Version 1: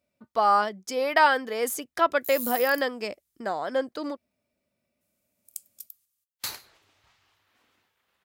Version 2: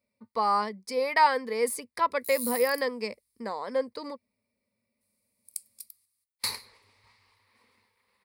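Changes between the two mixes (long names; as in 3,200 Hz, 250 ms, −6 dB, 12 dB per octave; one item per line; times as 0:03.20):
speech −4.5 dB
master: add EQ curve with evenly spaced ripples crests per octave 0.92, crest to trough 12 dB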